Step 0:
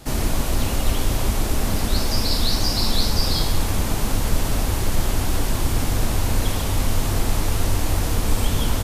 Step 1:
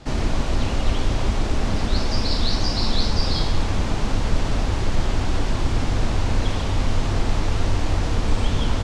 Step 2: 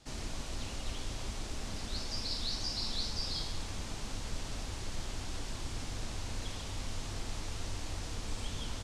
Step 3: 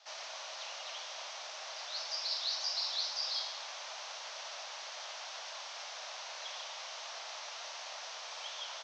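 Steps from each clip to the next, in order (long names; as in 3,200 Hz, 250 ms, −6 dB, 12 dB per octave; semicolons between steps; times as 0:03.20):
Bessel low-pass filter 4,700 Hz, order 4
first-order pre-emphasis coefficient 0.8; level −5 dB
Chebyshev band-pass filter 600–6,100 Hz, order 4; level +3 dB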